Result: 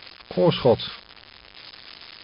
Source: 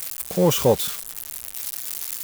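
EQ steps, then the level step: brick-wall FIR low-pass 5200 Hz; notches 60/120/180 Hz; 0.0 dB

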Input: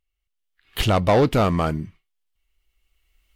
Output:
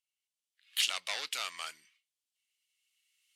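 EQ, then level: Butterworth band-pass 5100 Hz, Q 0.66; high shelf 5500 Hz +8.5 dB; -3.5 dB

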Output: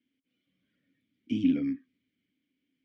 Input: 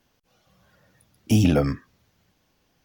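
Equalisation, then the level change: vowel filter i; high shelf 6700 Hz -11 dB; 0.0 dB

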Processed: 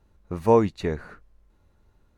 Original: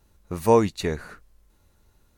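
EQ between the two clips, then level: LPF 1800 Hz 6 dB/oct; 0.0 dB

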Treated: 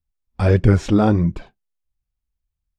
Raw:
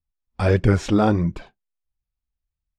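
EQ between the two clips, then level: low shelf 370 Hz +5.5 dB; -1.0 dB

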